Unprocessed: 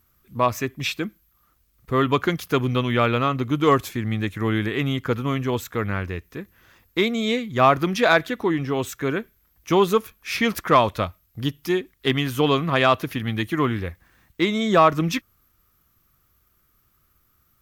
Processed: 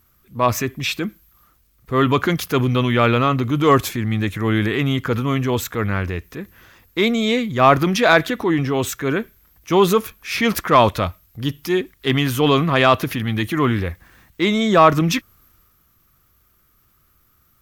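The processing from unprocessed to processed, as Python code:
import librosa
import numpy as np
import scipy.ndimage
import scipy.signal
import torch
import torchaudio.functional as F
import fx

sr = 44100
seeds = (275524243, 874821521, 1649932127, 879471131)

y = fx.transient(x, sr, attack_db=-4, sustain_db=4)
y = y * librosa.db_to_amplitude(4.5)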